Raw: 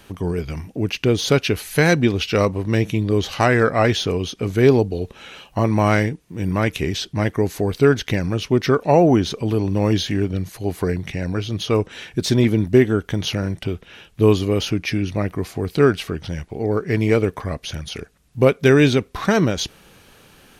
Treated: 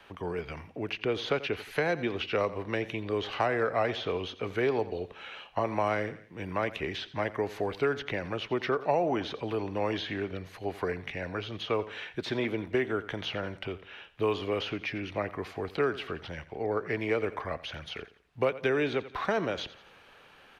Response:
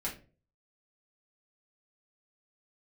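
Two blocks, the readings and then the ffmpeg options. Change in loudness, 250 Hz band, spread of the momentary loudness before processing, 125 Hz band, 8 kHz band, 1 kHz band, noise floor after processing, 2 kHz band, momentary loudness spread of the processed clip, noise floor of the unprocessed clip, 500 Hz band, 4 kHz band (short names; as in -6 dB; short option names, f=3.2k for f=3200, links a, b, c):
-12.5 dB, -15.5 dB, 12 LU, -19.5 dB, under -20 dB, -8.0 dB, -56 dBFS, -9.0 dB, 10 LU, -51 dBFS, -11.0 dB, -10.5 dB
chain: -filter_complex "[0:a]acrossover=split=480 3600:gain=0.224 1 0.112[a][b][c];[a][b][c]amix=inputs=3:normalize=0,aecho=1:1:86|172|258:0.133|0.048|0.0173,acrossover=split=260|790|3700[d][e][f][g];[d]acompressor=threshold=-36dB:ratio=4[h];[e]acompressor=threshold=-24dB:ratio=4[i];[f]acompressor=threshold=-31dB:ratio=4[j];[g]acompressor=threshold=-47dB:ratio=4[k];[h][i][j][k]amix=inputs=4:normalize=0,volume=-2.5dB"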